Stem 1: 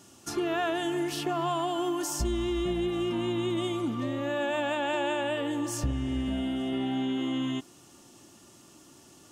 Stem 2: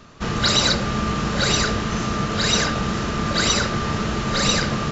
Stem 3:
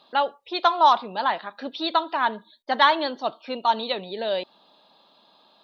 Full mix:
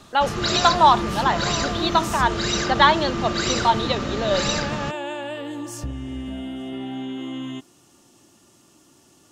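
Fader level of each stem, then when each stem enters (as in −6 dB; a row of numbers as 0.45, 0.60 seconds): −1.0, −5.0, +2.5 decibels; 0.00, 0.00, 0.00 seconds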